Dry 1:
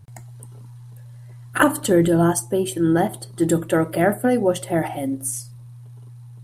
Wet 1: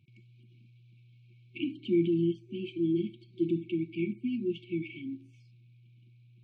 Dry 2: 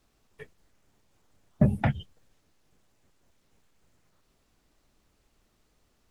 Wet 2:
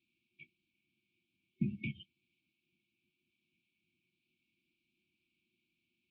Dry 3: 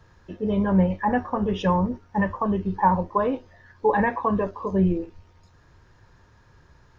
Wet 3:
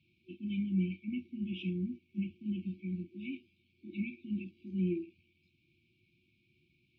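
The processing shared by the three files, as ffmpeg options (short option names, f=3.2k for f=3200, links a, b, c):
-filter_complex "[0:a]afftfilt=real='re*(1-between(b*sr/4096,370,2200))':imag='im*(1-between(b*sr/4096,370,2200))':win_size=4096:overlap=0.75,acrossover=split=2600[a][b];[b]acompressor=threshold=-45dB:ratio=4:attack=1:release=60[c];[a][c]amix=inputs=2:normalize=0,highpass=250,equalizer=f=290:t=q:w=4:g=-9,equalizer=f=430:t=q:w=4:g=4,equalizer=f=670:t=q:w=4:g=6,equalizer=f=1k:t=q:w=4:g=-3,equalizer=f=1.5k:t=q:w=4:g=6,equalizer=f=2.3k:t=q:w=4:g=7,lowpass=f=3.3k:w=0.5412,lowpass=f=3.3k:w=1.3066,volume=-4.5dB"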